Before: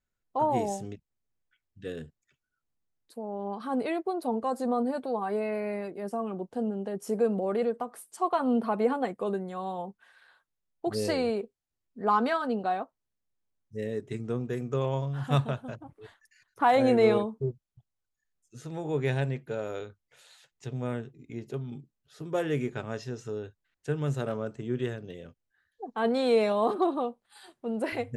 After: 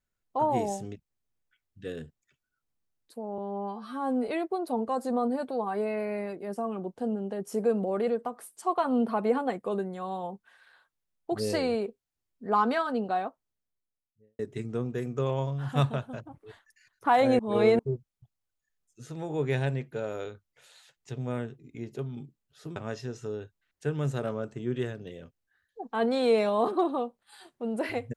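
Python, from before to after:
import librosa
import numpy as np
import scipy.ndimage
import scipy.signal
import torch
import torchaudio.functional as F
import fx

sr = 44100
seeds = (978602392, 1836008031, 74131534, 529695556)

y = fx.studio_fade_out(x, sr, start_s=12.82, length_s=1.12)
y = fx.edit(y, sr, fx.stretch_span(start_s=3.38, length_s=0.45, factor=2.0),
    fx.reverse_span(start_s=16.94, length_s=0.4),
    fx.cut(start_s=22.31, length_s=0.48), tone=tone)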